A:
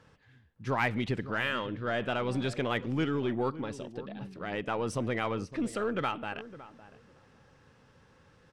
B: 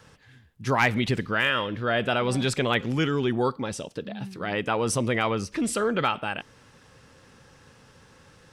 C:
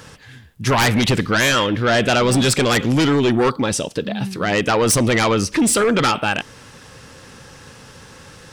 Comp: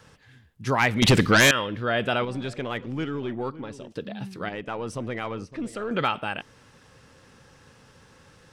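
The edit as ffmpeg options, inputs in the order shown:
-filter_complex "[0:a]asplit=2[a][b];[1:a]asplit=4[c][d][e][f];[c]atrim=end=1.022[g];[2:a]atrim=start=1.018:end=1.512[h];[d]atrim=start=1.508:end=2.252[i];[a]atrim=start=2.248:end=3.922[j];[e]atrim=start=3.918:end=4.492[k];[b]atrim=start=4.488:end=5.912[l];[f]atrim=start=5.908[m];[g][h]acrossfade=d=0.004:c1=hsin:c2=hsin[n];[n][i]acrossfade=d=0.004:c1=hsin:c2=hsin[o];[o][j]acrossfade=d=0.004:c1=hsin:c2=hsin[p];[p][k]acrossfade=d=0.004:c1=hsin:c2=hsin[q];[q][l]acrossfade=d=0.004:c1=hsin:c2=hsin[r];[r][m]acrossfade=d=0.004:c1=hsin:c2=hsin"

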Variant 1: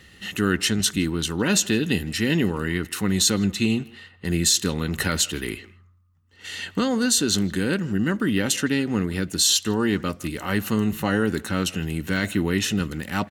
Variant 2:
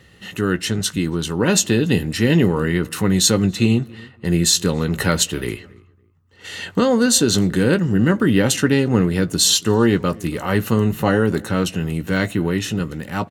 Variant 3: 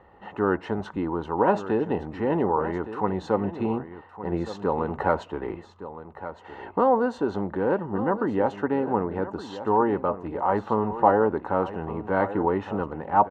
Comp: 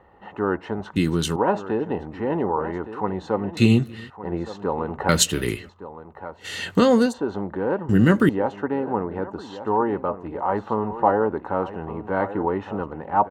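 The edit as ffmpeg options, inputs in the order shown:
-filter_complex "[1:a]asplit=5[a][b][c][d][e];[2:a]asplit=6[f][g][h][i][j][k];[f]atrim=end=0.962[l];[a]atrim=start=0.958:end=1.362[m];[g]atrim=start=1.358:end=3.572[n];[b]atrim=start=3.568:end=4.102[o];[h]atrim=start=4.098:end=5.092[p];[c]atrim=start=5.088:end=5.692[q];[i]atrim=start=5.688:end=6.47[r];[d]atrim=start=6.31:end=7.14[s];[j]atrim=start=6.98:end=7.892[t];[e]atrim=start=7.888:end=8.292[u];[k]atrim=start=8.288[v];[l][m]acrossfade=d=0.004:c1=hsin:c2=hsin[w];[w][n]acrossfade=d=0.004:c1=hsin:c2=hsin[x];[x][o]acrossfade=d=0.004:c1=hsin:c2=hsin[y];[y][p]acrossfade=d=0.004:c1=hsin:c2=hsin[z];[z][q]acrossfade=d=0.004:c1=hsin:c2=hsin[aa];[aa][r]acrossfade=d=0.004:c1=hsin:c2=hsin[ab];[ab][s]acrossfade=d=0.16:c1=tri:c2=tri[ac];[ac][t]acrossfade=d=0.16:c1=tri:c2=tri[ad];[ad][u]acrossfade=d=0.004:c1=hsin:c2=hsin[ae];[ae][v]acrossfade=d=0.004:c1=hsin:c2=hsin"

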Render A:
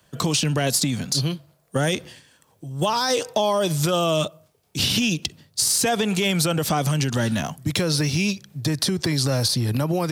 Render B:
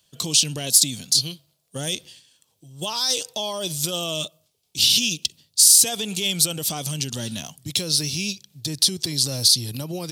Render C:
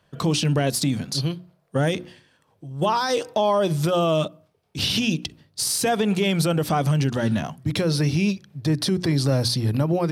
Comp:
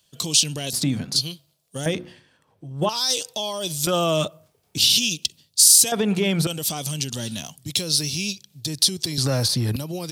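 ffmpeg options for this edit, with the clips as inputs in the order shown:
-filter_complex "[2:a]asplit=3[a][b][c];[0:a]asplit=2[d][e];[1:a]asplit=6[f][g][h][i][j][k];[f]atrim=end=0.732[l];[a]atrim=start=0.728:end=1.162[m];[g]atrim=start=1.158:end=1.862[n];[b]atrim=start=1.858:end=2.892[o];[h]atrim=start=2.888:end=3.872[p];[d]atrim=start=3.868:end=4.782[q];[i]atrim=start=4.778:end=5.922[r];[c]atrim=start=5.918:end=6.472[s];[j]atrim=start=6.468:end=9.182[t];[e]atrim=start=9.178:end=9.762[u];[k]atrim=start=9.758[v];[l][m]acrossfade=d=0.004:c1=hsin:c2=hsin[w];[w][n]acrossfade=d=0.004:c1=hsin:c2=hsin[x];[x][o]acrossfade=d=0.004:c1=hsin:c2=hsin[y];[y][p]acrossfade=d=0.004:c1=hsin:c2=hsin[z];[z][q]acrossfade=d=0.004:c1=hsin:c2=hsin[aa];[aa][r]acrossfade=d=0.004:c1=hsin:c2=hsin[ab];[ab][s]acrossfade=d=0.004:c1=hsin:c2=hsin[ac];[ac][t]acrossfade=d=0.004:c1=hsin:c2=hsin[ad];[ad][u]acrossfade=d=0.004:c1=hsin:c2=hsin[ae];[ae][v]acrossfade=d=0.004:c1=hsin:c2=hsin"

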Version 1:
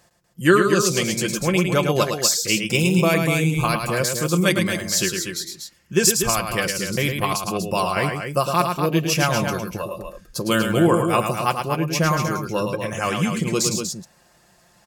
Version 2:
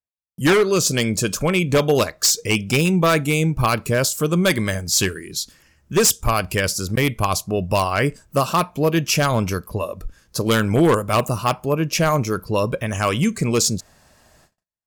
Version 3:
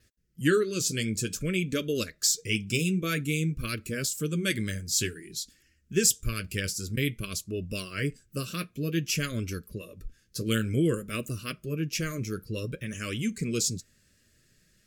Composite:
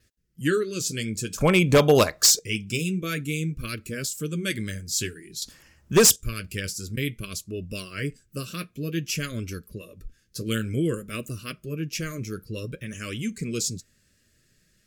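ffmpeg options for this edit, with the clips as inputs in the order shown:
-filter_complex "[1:a]asplit=2[a][b];[2:a]asplit=3[c][d][e];[c]atrim=end=1.382[f];[a]atrim=start=1.378:end=2.392[g];[d]atrim=start=2.388:end=5.422[h];[b]atrim=start=5.418:end=6.162[i];[e]atrim=start=6.158[j];[f][g]acrossfade=d=0.004:c1=hsin:c2=hsin[k];[k][h]acrossfade=d=0.004:c1=hsin:c2=hsin[l];[l][i]acrossfade=d=0.004:c1=hsin:c2=hsin[m];[m][j]acrossfade=d=0.004:c1=hsin:c2=hsin"

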